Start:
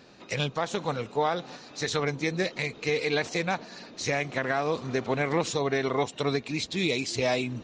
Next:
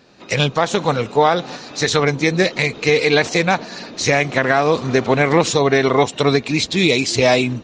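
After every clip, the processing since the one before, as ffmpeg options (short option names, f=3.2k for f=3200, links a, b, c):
-af "dynaudnorm=f=160:g=3:m=12dB,volume=1.5dB"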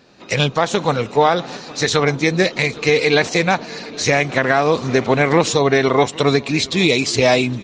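-af "aecho=1:1:815:0.0841"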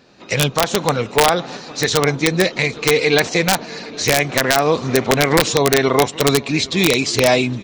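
-af "aeval=exprs='(mod(1.41*val(0)+1,2)-1)/1.41':c=same"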